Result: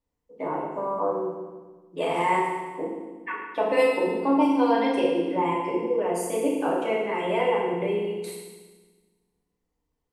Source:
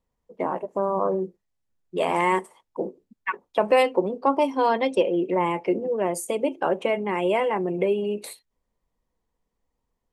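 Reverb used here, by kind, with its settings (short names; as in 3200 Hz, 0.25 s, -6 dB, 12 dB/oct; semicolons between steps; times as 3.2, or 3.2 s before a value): FDN reverb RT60 1.3 s, low-frequency decay 1.4×, high-frequency decay 1×, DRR -5.5 dB; gain -8 dB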